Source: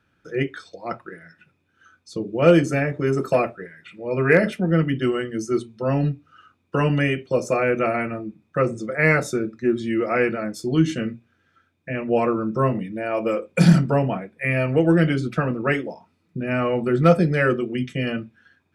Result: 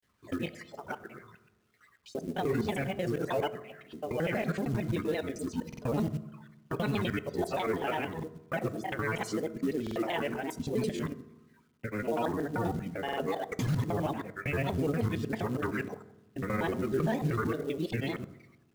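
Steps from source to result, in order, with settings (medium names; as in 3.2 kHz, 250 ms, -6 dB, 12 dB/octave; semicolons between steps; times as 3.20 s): time reversed locally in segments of 79 ms; peak limiter -14.5 dBFS, peak gain reduction 10.5 dB; granulator, spray 16 ms, pitch spread up and down by 7 st; companded quantiser 6-bit; reverberation RT60 1.0 s, pre-delay 4 ms, DRR 13 dB; buffer glitch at 5.68/9.82/13.04 s, samples 2048, times 2; trim -7 dB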